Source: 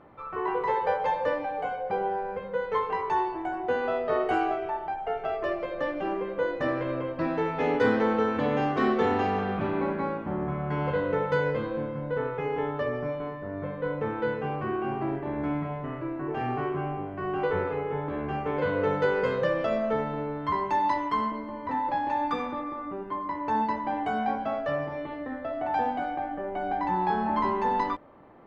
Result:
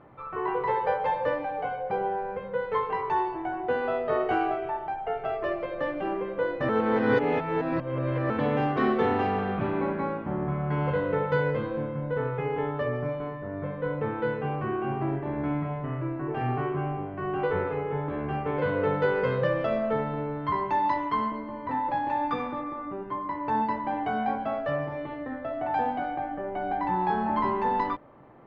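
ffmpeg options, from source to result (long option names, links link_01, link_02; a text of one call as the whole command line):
ffmpeg -i in.wav -filter_complex "[0:a]asplit=3[link_01][link_02][link_03];[link_01]atrim=end=6.692[link_04];[link_02]atrim=start=6.688:end=8.302,asetpts=PTS-STARTPTS,areverse[link_05];[link_03]atrim=start=8.298[link_06];[link_04][link_05]acrossfade=duration=0.004:curve1=hsin:curve2=hsin[link_07];[link_07][link_06]acrossfade=duration=0.004:curve1=hsin:curve2=hsin,lowpass=3900,equalizer=frequency=130:width_type=o:width=0.24:gain=9.5" out.wav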